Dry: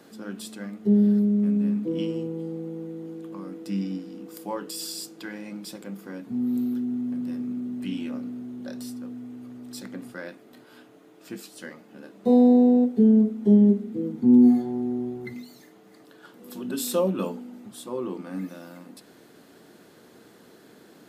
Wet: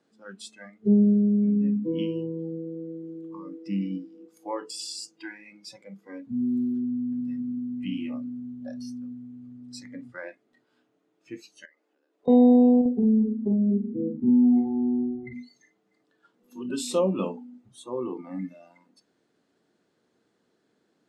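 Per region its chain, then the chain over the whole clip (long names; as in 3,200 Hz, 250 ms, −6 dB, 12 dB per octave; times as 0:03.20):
0:11.65–0:12.28: Butterworth high-pass 300 Hz + downward compressor 8 to 1, threshold −50 dBFS
0:12.81–0:15.33: downward compressor 5 to 1, threshold −20 dBFS + head-to-tape spacing loss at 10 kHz 23 dB + double-tracking delay 45 ms −3 dB
whole clip: low-pass filter 8,400 Hz 24 dB per octave; noise reduction from a noise print of the clip's start 19 dB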